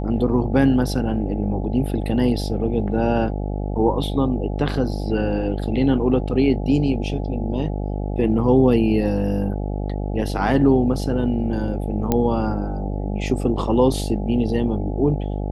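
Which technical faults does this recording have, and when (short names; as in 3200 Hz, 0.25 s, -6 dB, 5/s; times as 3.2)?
buzz 50 Hz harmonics 17 -25 dBFS
12.12 pop -6 dBFS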